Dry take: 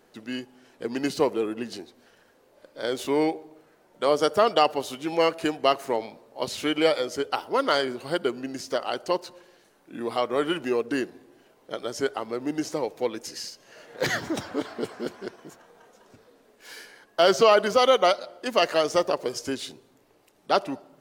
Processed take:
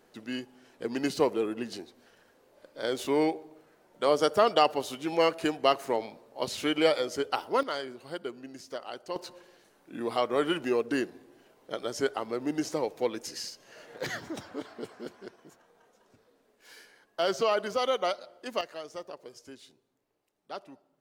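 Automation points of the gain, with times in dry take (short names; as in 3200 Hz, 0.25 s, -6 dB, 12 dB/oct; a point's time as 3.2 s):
-2.5 dB
from 7.63 s -11 dB
from 9.16 s -2 dB
from 13.98 s -9 dB
from 18.61 s -18 dB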